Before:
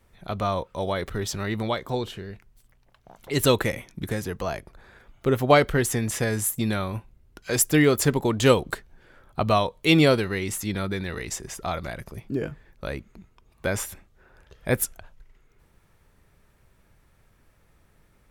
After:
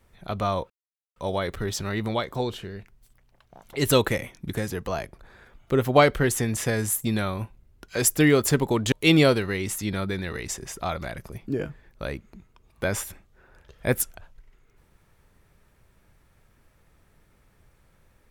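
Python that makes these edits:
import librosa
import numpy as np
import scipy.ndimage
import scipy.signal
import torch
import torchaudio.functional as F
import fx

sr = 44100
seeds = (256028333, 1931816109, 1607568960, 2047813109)

y = fx.edit(x, sr, fx.insert_silence(at_s=0.7, length_s=0.46),
    fx.cut(start_s=8.46, length_s=1.28), tone=tone)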